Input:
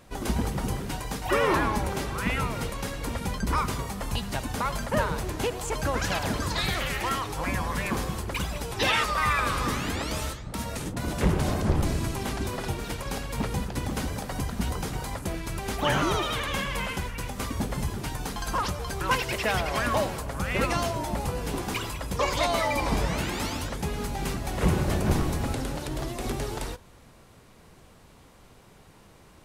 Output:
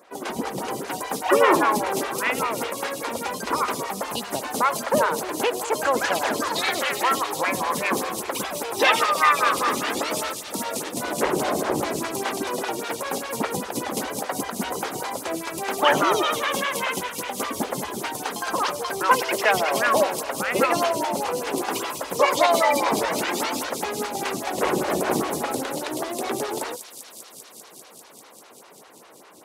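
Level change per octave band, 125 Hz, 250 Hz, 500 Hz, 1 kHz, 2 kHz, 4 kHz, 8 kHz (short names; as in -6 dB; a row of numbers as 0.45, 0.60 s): -11.0, +1.5, +7.0, +7.5, +5.5, +4.0, +7.0 dB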